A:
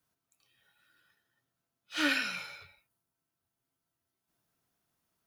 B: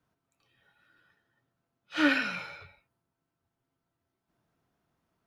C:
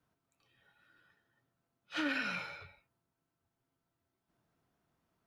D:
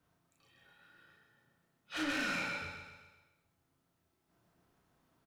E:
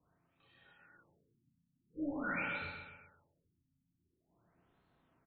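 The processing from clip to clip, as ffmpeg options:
ffmpeg -i in.wav -af "lowpass=frequency=1300:poles=1,volume=7.5dB" out.wav
ffmpeg -i in.wav -af "alimiter=limit=-23.5dB:level=0:latency=1:release=94,volume=-2dB" out.wav
ffmpeg -i in.wav -filter_complex "[0:a]asoftclip=type=tanh:threshold=-38dB,asplit=2[link_01][link_02];[link_02]adelay=35,volume=-2dB[link_03];[link_01][link_03]amix=inputs=2:normalize=0,aecho=1:1:129|258|387|516|645|774:0.473|0.246|0.128|0.0665|0.0346|0.018,volume=3dB" out.wav
ffmpeg -i in.wav -af "afftfilt=real='re*lt(b*sr/1024,280*pow(4500/280,0.5+0.5*sin(2*PI*0.46*pts/sr)))':imag='im*lt(b*sr/1024,280*pow(4500/280,0.5+0.5*sin(2*PI*0.46*pts/sr)))':win_size=1024:overlap=0.75" out.wav

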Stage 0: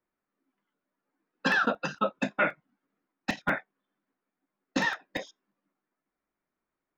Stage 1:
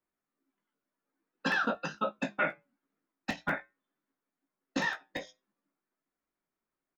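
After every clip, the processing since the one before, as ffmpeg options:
ffmpeg -i in.wav -filter_complex "[0:a]flanger=delay=7:depth=1.8:regen=-80:speed=0.47:shape=triangular,asplit=2[link_01][link_02];[link_02]adelay=18,volume=-9dB[link_03];[link_01][link_03]amix=inputs=2:normalize=0" out.wav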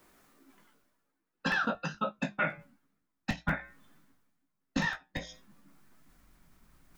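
ffmpeg -i in.wav -af "asubboost=boost=9.5:cutoff=130,areverse,acompressor=mode=upward:threshold=-41dB:ratio=2.5,areverse" out.wav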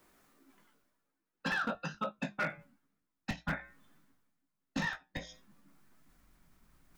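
ffmpeg -i in.wav -af "volume=23.5dB,asoftclip=hard,volume=-23.5dB,volume=-3.5dB" out.wav

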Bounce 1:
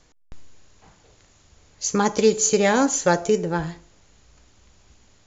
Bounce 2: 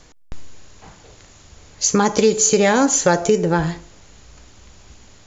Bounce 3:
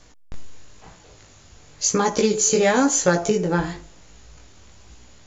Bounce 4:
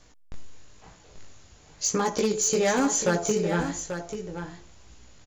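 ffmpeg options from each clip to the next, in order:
ffmpeg -i in.wav -filter_complex "[0:a]asplit=2[link_01][link_02];[link_02]alimiter=limit=-14dB:level=0:latency=1:release=26,volume=-3dB[link_03];[link_01][link_03]amix=inputs=2:normalize=0,acompressor=threshold=-20dB:ratio=2,volume=5dB" out.wav
ffmpeg -i in.wav -af "flanger=delay=16.5:depth=6:speed=0.98" out.wav
ffmpeg -i in.wav -filter_complex "[0:a]asoftclip=type=hard:threshold=-12.5dB,asplit=2[link_01][link_02];[link_02]aecho=0:1:837:0.355[link_03];[link_01][link_03]amix=inputs=2:normalize=0,volume=-5dB" out.wav

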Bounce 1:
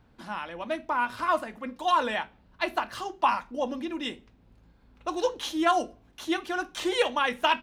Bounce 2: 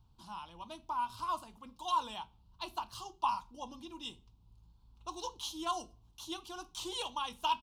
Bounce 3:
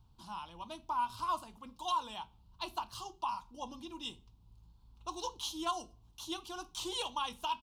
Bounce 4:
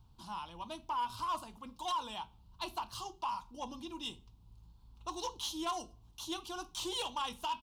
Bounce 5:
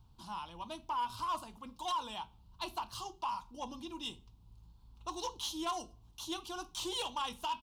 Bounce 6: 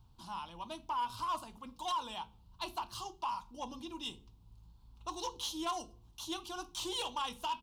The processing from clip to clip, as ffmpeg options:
ffmpeg -i in.wav -af "firequalizer=gain_entry='entry(110,0);entry(250,-15);entry(360,-13);entry(550,-21);entry(950,-3);entry(1800,-29);entry(2900,-6);entry(4500,-2)':delay=0.05:min_phase=1,volume=-2dB" out.wav
ffmpeg -i in.wav -af "alimiter=level_in=2dB:limit=-24dB:level=0:latency=1:release=392,volume=-2dB,volume=1.5dB" out.wav
ffmpeg -i in.wav -af "asoftclip=type=tanh:threshold=-32dB,volume=2dB" out.wav
ffmpeg -i in.wav -af anull out.wav
ffmpeg -i in.wav -af "bandreject=frequency=70.33:width_type=h:width=4,bandreject=frequency=140.66:width_type=h:width=4,bandreject=frequency=210.99:width_type=h:width=4,bandreject=frequency=281.32:width_type=h:width=4,bandreject=frequency=351.65:width_type=h:width=4,bandreject=frequency=421.98:width_type=h:width=4,bandreject=frequency=492.31:width_type=h:width=4" out.wav

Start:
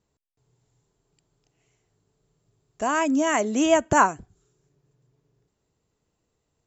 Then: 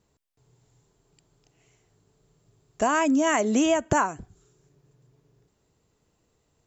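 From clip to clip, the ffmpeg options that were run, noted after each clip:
ffmpeg -i in.wav -af "acompressor=threshold=-24dB:ratio=12,volume=5.5dB" out.wav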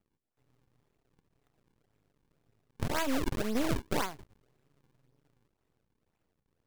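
ffmpeg -i in.wav -af "acrusher=samples=39:mix=1:aa=0.000001:lfo=1:lforange=62.4:lforate=1.9,aeval=exprs='max(val(0),0)':channel_layout=same,volume=-5dB" out.wav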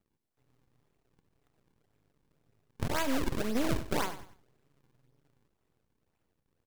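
ffmpeg -i in.wav -af "aecho=1:1:96|192|288:0.224|0.0716|0.0229" out.wav

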